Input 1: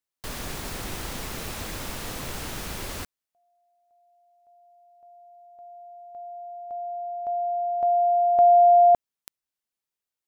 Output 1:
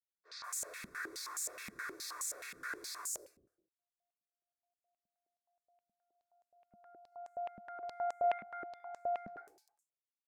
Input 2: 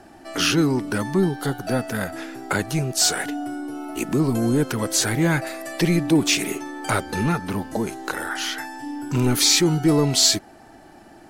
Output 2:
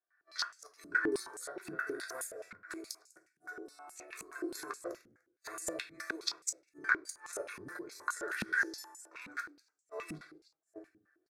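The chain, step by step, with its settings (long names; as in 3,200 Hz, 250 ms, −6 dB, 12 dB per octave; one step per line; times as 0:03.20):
spectral tilt +2.5 dB per octave
three-band delay without the direct sound mids, highs, lows 200/410 ms, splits 590/5,000 Hz
gate with flip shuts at −11 dBFS, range −36 dB
harmonic generator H 4 −26 dB, 7 −21 dB, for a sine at −6 dBFS
phaser with its sweep stopped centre 810 Hz, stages 6
noise gate −52 dBFS, range −17 dB
compressor whose output falls as the input rises −32 dBFS, ratio −0.5
low-shelf EQ 400 Hz −8.5 dB
comb filter 2.7 ms, depth 36%
on a send: echo with shifted repeats 99 ms, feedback 52%, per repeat +52 Hz, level −23.5 dB
on the sum: rectangular room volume 31 cubic metres, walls mixed, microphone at 0.36 metres
band-pass on a step sequencer 9.5 Hz 210–7,300 Hz
level +8 dB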